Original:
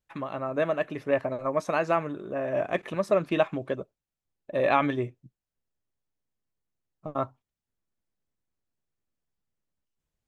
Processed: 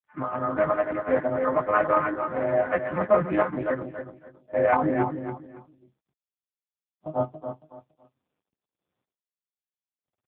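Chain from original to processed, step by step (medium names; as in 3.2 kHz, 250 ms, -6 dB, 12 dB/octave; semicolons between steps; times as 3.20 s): partials quantised in pitch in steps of 3 st; Chebyshev low-pass 1.6 kHz, order 3, from 4.74 s 840 Hz; gate -39 dBFS, range -13 dB; peaking EQ 440 Hz -11.5 dB 0.22 oct; feedback delay 279 ms, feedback 25%, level -8 dB; trim +6 dB; AMR-NB 4.75 kbps 8 kHz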